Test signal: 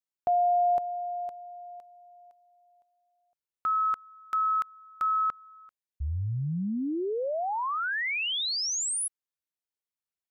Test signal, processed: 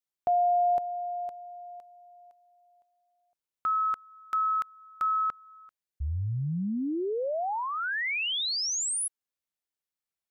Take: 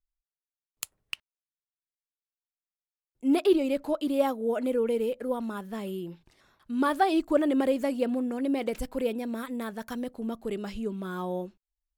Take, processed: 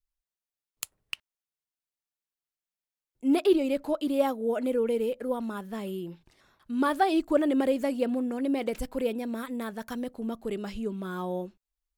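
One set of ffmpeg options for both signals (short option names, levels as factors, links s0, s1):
-af "adynamicequalizer=threshold=0.00891:dfrequency=1100:dqfactor=2.8:tfrequency=1100:tqfactor=2.8:attack=5:release=100:ratio=0.375:range=2.5:mode=cutabove:tftype=bell"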